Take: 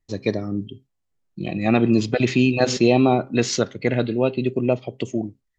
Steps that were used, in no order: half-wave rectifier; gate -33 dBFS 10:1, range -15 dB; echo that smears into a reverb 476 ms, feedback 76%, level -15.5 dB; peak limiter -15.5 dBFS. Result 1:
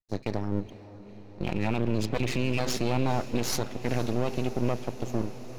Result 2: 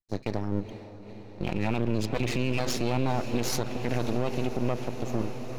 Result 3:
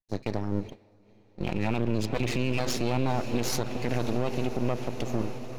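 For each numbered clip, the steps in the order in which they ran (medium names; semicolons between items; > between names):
half-wave rectifier > gate > peak limiter > echo that smears into a reverb; half-wave rectifier > gate > echo that smears into a reverb > peak limiter; half-wave rectifier > echo that smears into a reverb > gate > peak limiter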